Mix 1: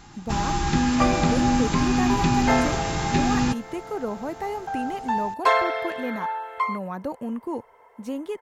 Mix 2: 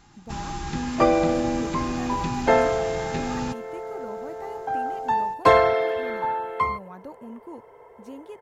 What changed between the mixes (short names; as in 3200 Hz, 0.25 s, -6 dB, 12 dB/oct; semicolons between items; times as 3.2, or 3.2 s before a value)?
speech -10.0 dB; first sound -7.5 dB; second sound: remove HPF 800 Hz 12 dB/oct